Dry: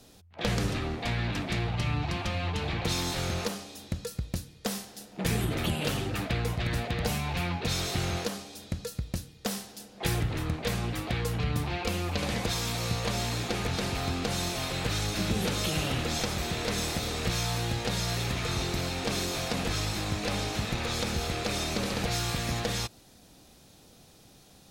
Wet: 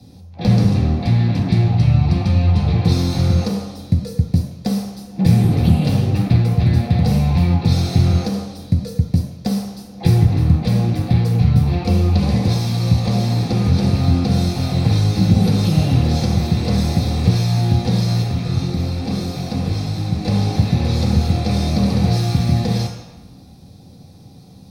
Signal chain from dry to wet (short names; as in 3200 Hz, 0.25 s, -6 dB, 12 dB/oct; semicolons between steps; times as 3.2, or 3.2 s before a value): 18.22–20.25 flange 1.4 Hz, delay 1.4 ms, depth 6.1 ms, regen -48%; reverb RT60 1.0 s, pre-delay 3 ms, DRR -3 dB; gain -5.5 dB